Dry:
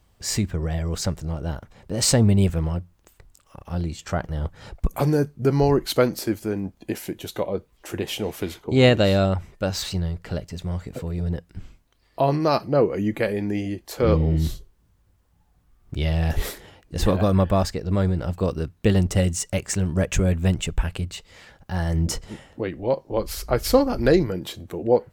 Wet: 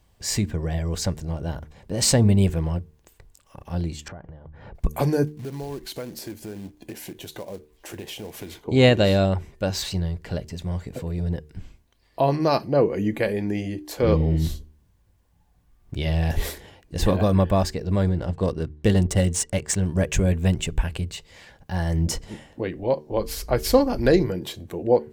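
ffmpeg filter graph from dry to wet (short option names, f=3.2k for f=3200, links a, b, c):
-filter_complex "[0:a]asettb=1/sr,asplit=3[a][b][c];[a]atrim=end=4.084[d];[b]atrim=start=4.08:end=4.75,asetpts=PTS-STARTPTS,afade=t=in:d=0.004:c=qsin,afade=t=out:st=0.666:d=0.004:c=qsin,lowpass=1.7k,acompressor=threshold=-35dB:ratio=12:attack=3.2:release=140:knee=1:detection=peak[e];[c]atrim=start=4.746[f];[d][e]acrossfade=d=0.004:c1=hsin:c2=qsin[g];[g][f]acrossfade=d=0.004:c1=qsin:c2=hsin,asettb=1/sr,asplit=3[h][i][j];[h]atrim=end=5.274[k];[i]atrim=start=5.27:end=8.64,asetpts=PTS-STARTPTS,afade=t=in:d=0.004:c=qsin,afade=t=out:st=3.366:d=0.004:c=qsin,acrusher=bits=4:mode=log:mix=0:aa=0.000001,acompressor=threshold=-34dB:ratio=3:attack=3.2:release=140:knee=1:detection=peak[l];[j]atrim=start=8.636[m];[k][l]acrossfade=d=0.004:c1=hsin:c2=qsin[n];[n][m]acrossfade=d=0.004:c1=qsin:c2=hsin,asettb=1/sr,asplit=3[o][p][q];[o]atrim=end=18.094[r];[p]atrim=start=18.09:end=19.83,asetpts=PTS-STARTPTS,afade=t=in:d=0.004:c=qsin,afade=t=out:st=1.736:d=0.004:c=qsin,equalizer=f=9.5k:t=o:w=0.8:g=8.5,bandreject=f=2.5k:w=10,adynamicsmooth=sensitivity=8:basefreq=3.2k[s];[q]atrim=start=19.826[t];[r][s]acrossfade=d=0.004:c1=hsin:c2=qsin[u];[u][t]acrossfade=d=0.004:c1=qsin:c2=hsin,bandreject=f=1.3k:w=7.3,bandreject=f=75.22:t=h:w=4,bandreject=f=150.44:t=h:w=4,bandreject=f=225.66:t=h:w=4,bandreject=f=300.88:t=h:w=4,bandreject=f=376.1:t=h:w=4,bandreject=f=451.32:t=h:w=4"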